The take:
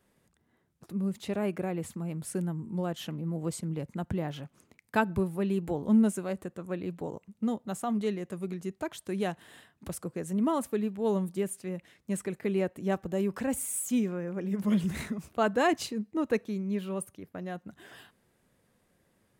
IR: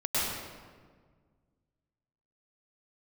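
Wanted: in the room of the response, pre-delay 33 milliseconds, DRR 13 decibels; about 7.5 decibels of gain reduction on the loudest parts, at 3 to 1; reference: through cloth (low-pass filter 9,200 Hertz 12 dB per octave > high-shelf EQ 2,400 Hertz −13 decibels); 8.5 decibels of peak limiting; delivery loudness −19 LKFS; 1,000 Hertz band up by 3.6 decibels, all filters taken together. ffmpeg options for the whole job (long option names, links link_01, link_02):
-filter_complex "[0:a]equalizer=frequency=1000:width_type=o:gain=7,acompressor=threshold=-28dB:ratio=3,alimiter=level_in=1dB:limit=-24dB:level=0:latency=1,volume=-1dB,asplit=2[link_01][link_02];[1:a]atrim=start_sample=2205,adelay=33[link_03];[link_02][link_03]afir=irnorm=-1:irlink=0,volume=-23.5dB[link_04];[link_01][link_04]amix=inputs=2:normalize=0,lowpass=9200,highshelf=frequency=2400:gain=-13,volume=16.5dB"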